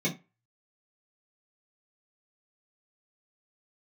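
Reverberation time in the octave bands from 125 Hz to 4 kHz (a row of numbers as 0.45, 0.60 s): 0.30, 0.25, 0.25, 0.25, 0.25, 0.20 s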